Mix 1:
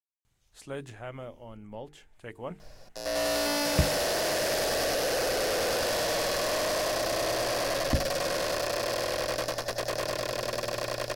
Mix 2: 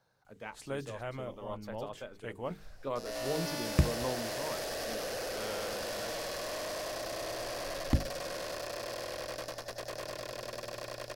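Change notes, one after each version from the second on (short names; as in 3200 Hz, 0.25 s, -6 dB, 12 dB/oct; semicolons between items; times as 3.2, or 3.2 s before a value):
speech: unmuted; second sound -9.5 dB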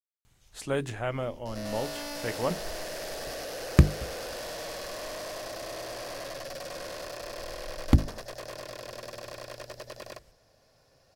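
speech: muted; first sound +8.5 dB; second sound: entry -1.50 s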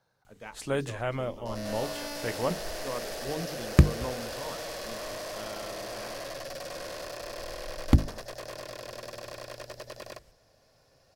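speech: unmuted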